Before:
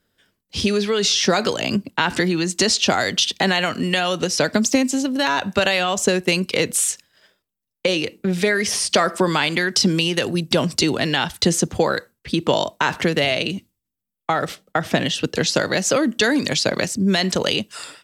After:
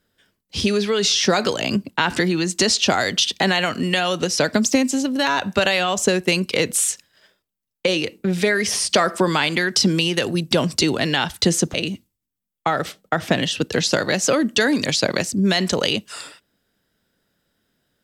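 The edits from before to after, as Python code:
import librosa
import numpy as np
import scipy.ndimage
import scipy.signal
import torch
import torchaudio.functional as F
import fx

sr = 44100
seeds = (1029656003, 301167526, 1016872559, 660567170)

y = fx.edit(x, sr, fx.cut(start_s=11.74, length_s=1.63), tone=tone)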